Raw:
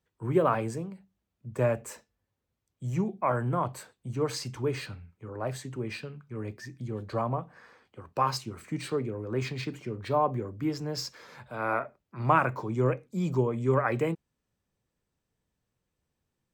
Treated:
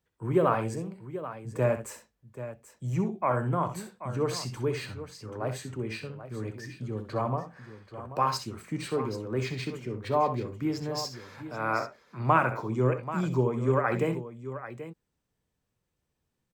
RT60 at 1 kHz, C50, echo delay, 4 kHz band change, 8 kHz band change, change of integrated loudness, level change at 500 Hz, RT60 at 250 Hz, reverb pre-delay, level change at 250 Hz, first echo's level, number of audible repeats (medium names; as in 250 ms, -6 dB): no reverb, no reverb, 64 ms, +0.5 dB, +0.5 dB, +0.5 dB, +0.5 dB, no reverb, no reverb, +0.5 dB, -10.5 dB, 2